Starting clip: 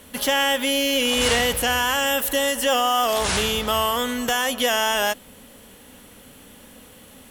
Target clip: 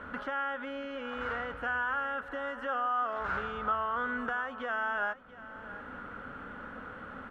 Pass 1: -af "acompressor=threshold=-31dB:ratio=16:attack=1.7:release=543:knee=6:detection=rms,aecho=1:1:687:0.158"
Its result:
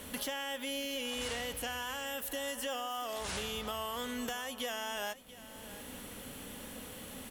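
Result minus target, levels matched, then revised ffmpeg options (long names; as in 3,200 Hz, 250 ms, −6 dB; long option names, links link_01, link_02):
1,000 Hz band −5.0 dB
-af "acompressor=threshold=-31dB:ratio=16:attack=1.7:release=543:knee=6:detection=rms,lowpass=frequency=1400:width_type=q:width=8.6,aecho=1:1:687:0.158"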